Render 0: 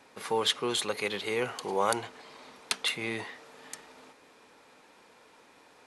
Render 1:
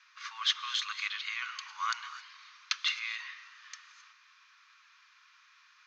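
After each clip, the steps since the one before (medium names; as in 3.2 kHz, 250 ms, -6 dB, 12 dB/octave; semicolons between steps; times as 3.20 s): Chebyshev band-pass 1.1–6.4 kHz, order 5; gated-style reverb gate 290 ms rising, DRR 12 dB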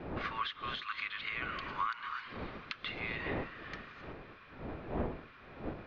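wind noise 540 Hz -51 dBFS; compression 16:1, threshold -38 dBFS, peak gain reduction 16.5 dB; distance through air 440 m; trim +9.5 dB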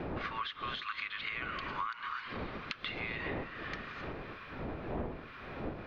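compression 2.5:1, threshold -47 dBFS, peak gain reduction 11.5 dB; trim +8 dB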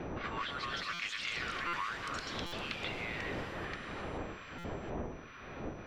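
whistle 5.9 kHz -68 dBFS; ever faster or slower copies 240 ms, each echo +4 st, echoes 3; buffer glitch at 0.93/1.67/2.46/4.58 s, samples 256, times 10; trim -2 dB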